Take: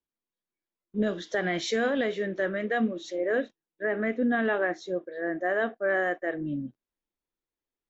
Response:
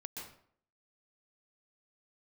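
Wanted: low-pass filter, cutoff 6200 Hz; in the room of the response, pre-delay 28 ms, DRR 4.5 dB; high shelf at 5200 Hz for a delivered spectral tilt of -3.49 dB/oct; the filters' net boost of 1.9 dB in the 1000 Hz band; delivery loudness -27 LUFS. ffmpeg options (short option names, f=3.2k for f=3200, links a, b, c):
-filter_complex "[0:a]lowpass=6.2k,equalizer=f=1k:t=o:g=3,highshelf=f=5.2k:g=4.5,asplit=2[a][b];[1:a]atrim=start_sample=2205,adelay=28[c];[b][c]afir=irnorm=-1:irlink=0,volume=-2dB[d];[a][d]amix=inputs=2:normalize=0,volume=-0.5dB"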